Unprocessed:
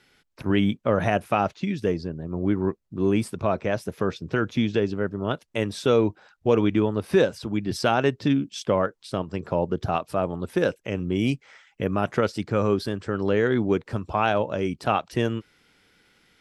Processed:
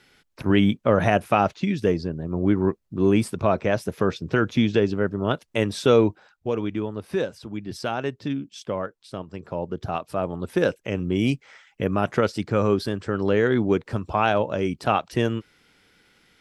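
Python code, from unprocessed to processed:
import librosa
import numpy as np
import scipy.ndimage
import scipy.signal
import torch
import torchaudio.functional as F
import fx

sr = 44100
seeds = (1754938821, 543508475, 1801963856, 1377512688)

y = fx.gain(x, sr, db=fx.line((6.01, 3.0), (6.53, -6.0), (9.44, -6.0), (10.62, 1.5)))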